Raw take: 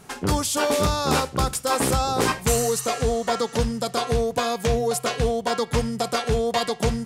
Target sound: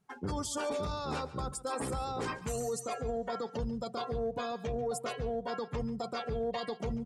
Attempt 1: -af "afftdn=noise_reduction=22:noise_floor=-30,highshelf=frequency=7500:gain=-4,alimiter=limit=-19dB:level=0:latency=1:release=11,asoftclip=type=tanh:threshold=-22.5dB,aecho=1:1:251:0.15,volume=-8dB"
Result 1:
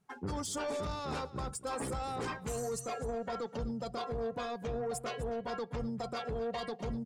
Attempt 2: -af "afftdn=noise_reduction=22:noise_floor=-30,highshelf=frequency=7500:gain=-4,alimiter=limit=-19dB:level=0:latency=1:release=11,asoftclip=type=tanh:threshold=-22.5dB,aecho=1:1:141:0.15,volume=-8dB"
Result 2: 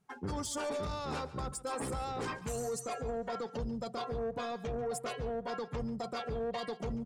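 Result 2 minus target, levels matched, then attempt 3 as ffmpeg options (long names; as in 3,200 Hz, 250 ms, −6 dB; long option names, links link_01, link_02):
soft clipping: distortion +14 dB
-af "afftdn=noise_reduction=22:noise_floor=-30,highshelf=frequency=7500:gain=-4,alimiter=limit=-19dB:level=0:latency=1:release=11,asoftclip=type=tanh:threshold=-14dB,aecho=1:1:141:0.15,volume=-8dB"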